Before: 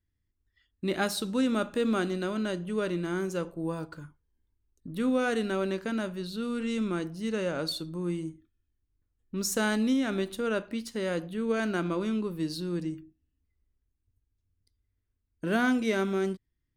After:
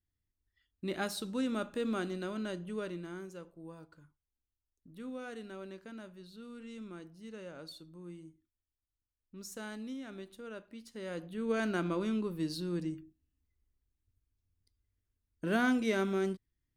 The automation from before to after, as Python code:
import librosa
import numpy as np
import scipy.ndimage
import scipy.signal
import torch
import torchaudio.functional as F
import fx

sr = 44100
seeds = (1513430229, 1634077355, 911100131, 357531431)

y = fx.gain(x, sr, db=fx.line((2.68, -7.0), (3.42, -16.0), (10.69, -16.0), (11.55, -3.5)))